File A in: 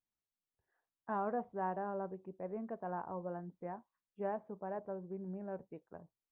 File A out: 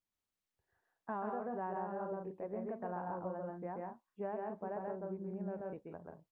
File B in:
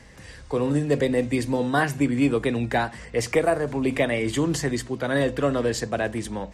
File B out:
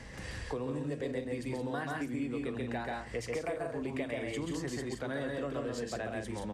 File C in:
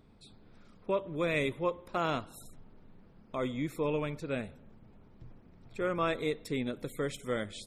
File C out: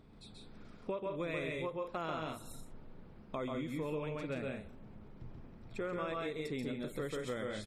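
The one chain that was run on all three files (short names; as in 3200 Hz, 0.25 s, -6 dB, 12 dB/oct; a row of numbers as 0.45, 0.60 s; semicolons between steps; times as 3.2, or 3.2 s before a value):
high shelf 7800 Hz -5.5 dB; loudspeakers at several distances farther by 46 m -2 dB, 59 m -7 dB; compressor 4:1, threshold -38 dBFS; gain +1 dB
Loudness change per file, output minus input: 0.0, -13.0, -6.0 LU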